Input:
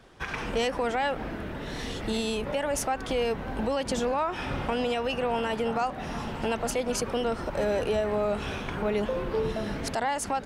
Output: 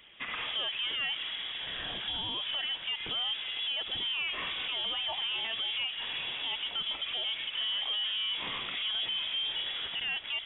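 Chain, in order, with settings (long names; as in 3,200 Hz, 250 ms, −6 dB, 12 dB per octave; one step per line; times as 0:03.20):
brickwall limiter −23 dBFS, peak gain reduction 4.5 dB
Bessel high-pass filter 160 Hz, order 8
soft clipping −26.5 dBFS, distortion −16 dB
voice inversion scrambler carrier 3,600 Hz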